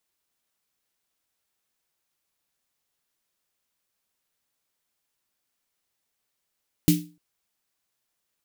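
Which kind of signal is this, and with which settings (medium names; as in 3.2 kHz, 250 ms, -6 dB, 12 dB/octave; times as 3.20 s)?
snare drum length 0.30 s, tones 170 Hz, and 300 Hz, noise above 2.3 kHz, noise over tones -8 dB, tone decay 0.34 s, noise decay 0.28 s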